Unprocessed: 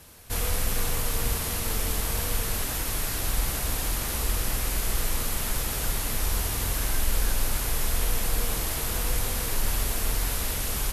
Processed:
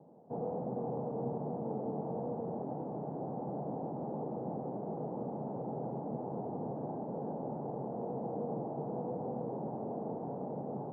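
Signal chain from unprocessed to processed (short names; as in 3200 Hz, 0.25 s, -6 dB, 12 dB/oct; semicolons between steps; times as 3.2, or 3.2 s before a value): Chebyshev band-pass 140–830 Hz, order 4; gain +1 dB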